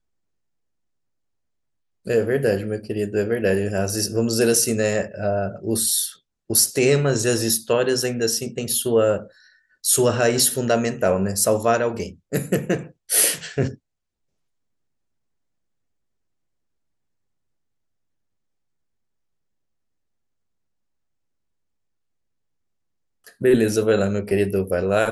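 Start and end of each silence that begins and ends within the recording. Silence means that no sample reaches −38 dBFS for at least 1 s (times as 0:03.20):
0:13.75–0:23.27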